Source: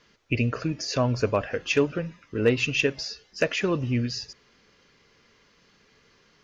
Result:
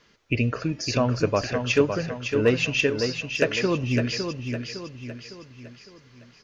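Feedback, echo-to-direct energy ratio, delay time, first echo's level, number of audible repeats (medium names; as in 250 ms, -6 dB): 46%, -5.5 dB, 558 ms, -6.5 dB, 5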